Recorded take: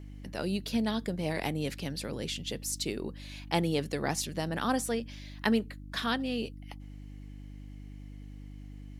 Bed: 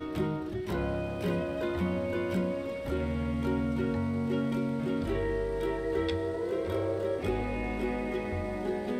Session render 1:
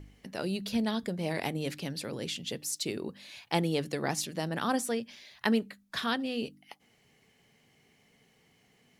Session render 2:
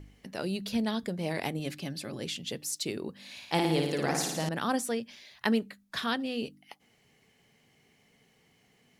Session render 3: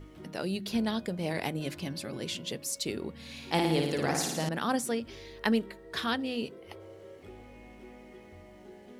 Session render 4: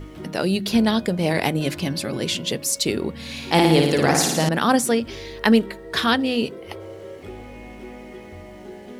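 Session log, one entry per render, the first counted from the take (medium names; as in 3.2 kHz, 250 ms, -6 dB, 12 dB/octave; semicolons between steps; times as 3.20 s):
de-hum 50 Hz, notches 6
1.59–2.21 s: comb of notches 470 Hz; 3.13–4.49 s: flutter echo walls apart 9.6 m, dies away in 0.94 s
add bed -18 dB
trim +11.5 dB; peak limiter -3 dBFS, peak gain reduction 2 dB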